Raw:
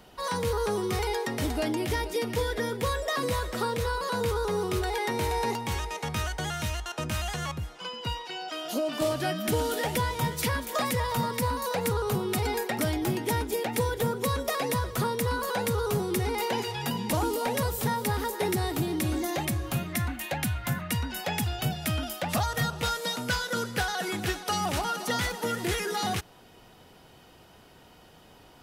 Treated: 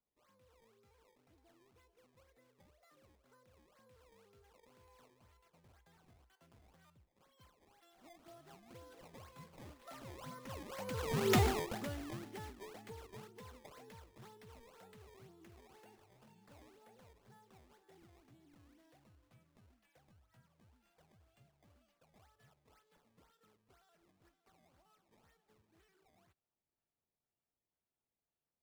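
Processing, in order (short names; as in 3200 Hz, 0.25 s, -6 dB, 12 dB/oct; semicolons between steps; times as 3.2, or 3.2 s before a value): Doppler pass-by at 11.35, 28 m/s, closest 2.4 m; high shelf 8100 Hz -5.5 dB; decimation with a swept rate 18×, swing 160% 2 Hz; gain +1 dB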